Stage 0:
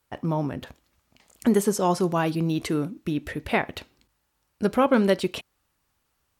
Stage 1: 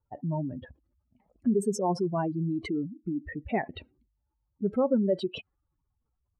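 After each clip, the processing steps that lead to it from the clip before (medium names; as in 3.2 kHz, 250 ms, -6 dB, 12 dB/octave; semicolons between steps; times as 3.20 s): spectral contrast enhancement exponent 2.6; level-controlled noise filter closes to 840 Hz, open at -22.5 dBFS; trim -4.5 dB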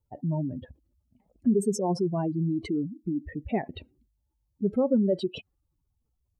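peaking EQ 1.4 kHz -10.5 dB 1.7 oct; trim +3 dB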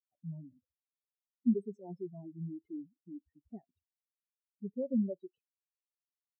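spectral contrast expander 2.5:1; trim -5.5 dB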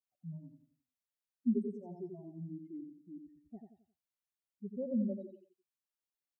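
feedback delay 88 ms, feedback 35%, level -5.5 dB; trim -3 dB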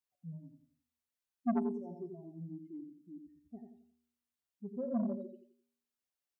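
feedback comb 80 Hz, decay 0.72 s, harmonics odd, mix 70%; transformer saturation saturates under 490 Hz; trim +9 dB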